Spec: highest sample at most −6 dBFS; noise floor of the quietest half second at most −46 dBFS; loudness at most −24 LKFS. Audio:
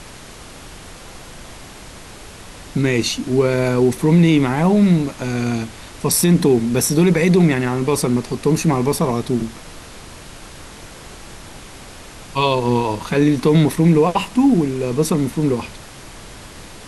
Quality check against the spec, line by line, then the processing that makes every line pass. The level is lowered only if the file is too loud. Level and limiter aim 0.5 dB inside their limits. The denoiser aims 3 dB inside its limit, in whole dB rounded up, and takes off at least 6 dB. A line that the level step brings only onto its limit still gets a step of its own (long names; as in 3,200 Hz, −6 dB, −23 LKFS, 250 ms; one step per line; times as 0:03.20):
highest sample −5.0 dBFS: out of spec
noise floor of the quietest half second −38 dBFS: out of spec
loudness −17.0 LKFS: out of spec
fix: broadband denoise 6 dB, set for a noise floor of −38 dBFS
level −7.5 dB